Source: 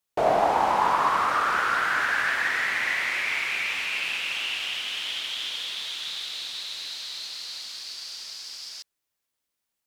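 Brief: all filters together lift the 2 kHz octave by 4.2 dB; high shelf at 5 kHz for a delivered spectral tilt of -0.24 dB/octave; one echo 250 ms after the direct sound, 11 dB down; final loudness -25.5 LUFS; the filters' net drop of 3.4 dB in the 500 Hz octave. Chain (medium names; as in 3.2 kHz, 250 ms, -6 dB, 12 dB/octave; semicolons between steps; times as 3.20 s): peaking EQ 500 Hz -5.5 dB; peaking EQ 2 kHz +5 dB; treble shelf 5 kHz +3.5 dB; delay 250 ms -11 dB; trim -2.5 dB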